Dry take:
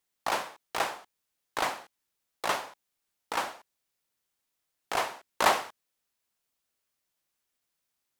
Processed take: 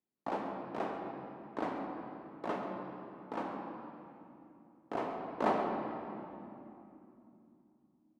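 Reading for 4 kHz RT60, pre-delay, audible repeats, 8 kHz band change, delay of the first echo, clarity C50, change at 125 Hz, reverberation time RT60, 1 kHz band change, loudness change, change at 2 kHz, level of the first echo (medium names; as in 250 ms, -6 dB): 2.0 s, 3 ms, 1, under -25 dB, 135 ms, 2.0 dB, +4.5 dB, 3.0 s, -6.5 dB, -8.0 dB, -13.5 dB, -13.0 dB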